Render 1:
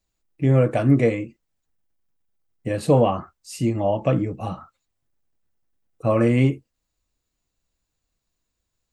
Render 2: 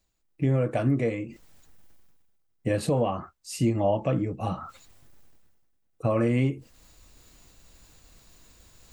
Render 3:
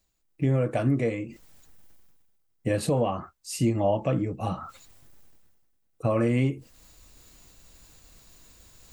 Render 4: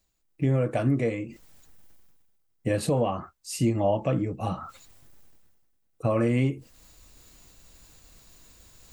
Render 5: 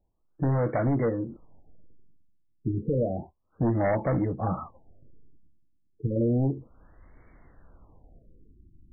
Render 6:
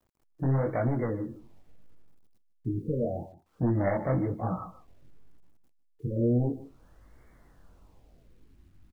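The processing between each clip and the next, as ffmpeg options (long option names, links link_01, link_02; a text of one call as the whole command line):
ffmpeg -i in.wav -af "areverse,acompressor=mode=upward:threshold=-34dB:ratio=2.5,areverse,alimiter=limit=-14.5dB:level=0:latency=1:release=440" out.wav
ffmpeg -i in.wav -af "highshelf=frequency=6300:gain=4" out.wav
ffmpeg -i in.wav -af anull out.wav
ffmpeg -i in.wav -af "aeval=exprs='0.2*sin(PI/2*1.78*val(0)/0.2)':channel_layout=same,afftfilt=real='re*lt(b*sr/1024,360*pow(2300/360,0.5+0.5*sin(2*PI*0.31*pts/sr)))':imag='im*lt(b*sr/1024,360*pow(2300/360,0.5+0.5*sin(2*PI*0.31*pts/sr)))':win_size=1024:overlap=0.75,volume=-6dB" out.wav
ffmpeg -i in.wav -af "flanger=delay=16.5:depth=6.7:speed=1.1,acrusher=bits=11:mix=0:aa=0.000001,aecho=1:1:151:0.15" out.wav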